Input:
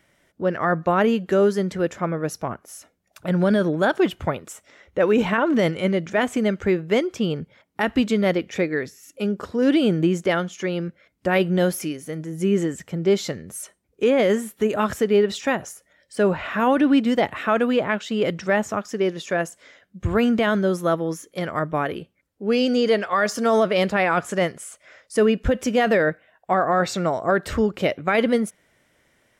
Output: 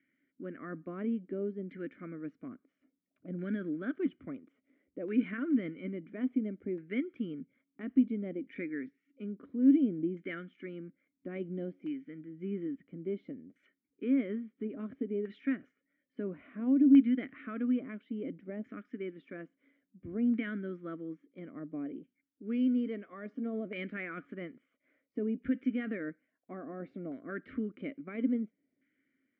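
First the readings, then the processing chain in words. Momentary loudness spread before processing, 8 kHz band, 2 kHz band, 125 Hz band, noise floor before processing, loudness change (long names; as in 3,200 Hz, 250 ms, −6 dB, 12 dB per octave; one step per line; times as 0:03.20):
12 LU, below −40 dB, −20.0 dB, −18.0 dB, −66 dBFS, −12.5 dB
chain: formant filter i
auto-filter low-pass saw down 0.59 Hz 760–1,600 Hz
level −2.5 dB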